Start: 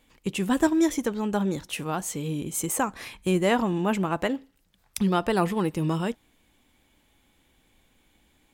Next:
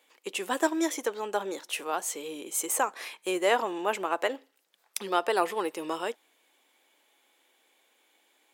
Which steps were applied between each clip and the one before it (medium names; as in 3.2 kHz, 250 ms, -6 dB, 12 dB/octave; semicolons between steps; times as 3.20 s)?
high-pass 390 Hz 24 dB/octave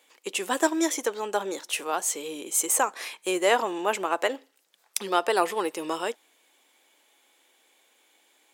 peaking EQ 7.2 kHz +4 dB 1.4 oct; trim +2.5 dB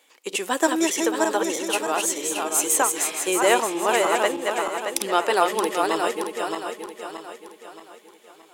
backward echo that repeats 312 ms, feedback 65%, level -3.5 dB; trim +2.5 dB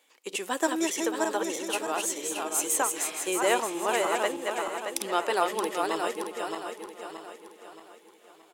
delay 1186 ms -22 dB; trim -6 dB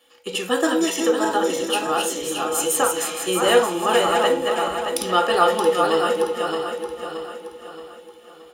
reverberation RT60 0.40 s, pre-delay 3 ms, DRR 1 dB; trim +7 dB